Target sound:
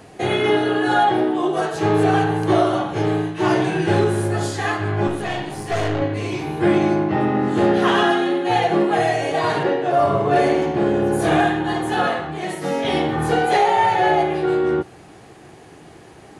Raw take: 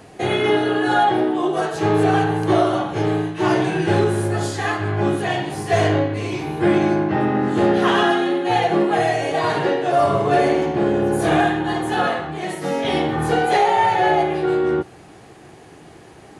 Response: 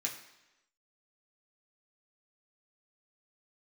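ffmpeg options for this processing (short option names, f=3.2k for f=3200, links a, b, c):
-filter_complex "[0:a]asettb=1/sr,asplit=3[a][b][c];[a]atrim=end=5.074[d];[b]atrim=start=5.07:end=6.02,asetpts=PTS-STARTPTS,afade=t=in:d=0.004:c=qsin,afade=t=out:st=0.946:d=0.004:c=qsin,aeval=exprs='(tanh(7.08*val(0)+0.55)-tanh(0.55))/7.08':c=same[e];[c]atrim=start=6.016[f];[d][e]acrossfade=d=0.004:c1=hsin:c2=qsin[g];[g][f]acrossfade=d=0.004:c1=qsin:c2=hsin,asettb=1/sr,asplit=3[h][i][j];[h]atrim=end=6.724[k];[i]atrim=start=6.72:end=7.53,asetpts=PTS-STARTPTS,afade=t=in:d=0.004:c=qsin,afade=t=out:st=0.806:d=0.004:c=qsin,bandreject=f=1.6k:w=11[l];[j]atrim=start=7.526[m];[k][l]acrossfade=d=0.004:c1=hsin:c2=qsin[n];[n][m]acrossfade=d=0.004:c1=qsin:c2=hsin,asettb=1/sr,asplit=3[o][p][q];[o]atrim=end=9.634[r];[p]atrim=start=9.63:end=10.36,asetpts=PTS-STARTPTS,afade=t=in:d=0.004:c=qsin,afade=t=out:st=0.726:d=0.004:c=qsin,highshelf=f=3.6k:g=-8[s];[q]atrim=start=10.356[t];[r][s]acrossfade=d=0.004:c1=hsin:c2=qsin[u];[u][t]acrossfade=d=0.004:c1=qsin:c2=hsin"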